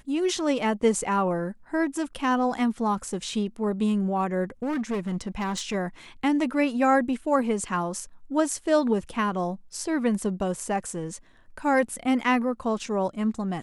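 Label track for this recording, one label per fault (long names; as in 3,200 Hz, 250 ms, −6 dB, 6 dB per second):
4.630000	5.750000	clipping −24 dBFS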